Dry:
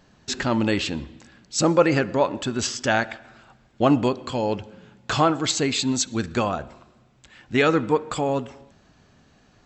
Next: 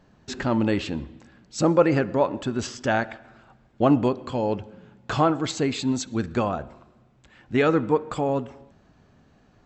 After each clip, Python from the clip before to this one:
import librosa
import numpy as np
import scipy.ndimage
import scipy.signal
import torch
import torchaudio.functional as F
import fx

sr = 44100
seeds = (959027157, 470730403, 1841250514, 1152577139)

y = fx.high_shelf(x, sr, hz=2100.0, db=-10.0)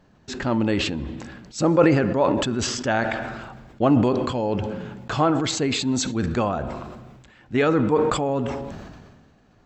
y = fx.sustainer(x, sr, db_per_s=35.0)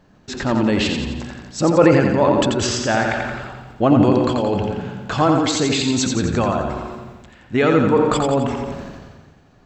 y = fx.echo_feedback(x, sr, ms=87, feedback_pct=55, wet_db=-5)
y = y * librosa.db_to_amplitude(3.0)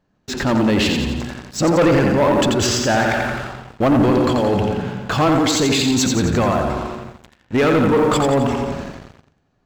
y = fx.leveller(x, sr, passes=3)
y = y * librosa.db_to_amplitude(-7.5)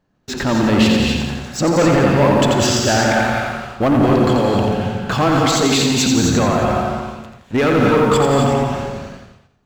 y = fx.rev_gated(x, sr, seeds[0], gate_ms=290, shape='rising', drr_db=2.0)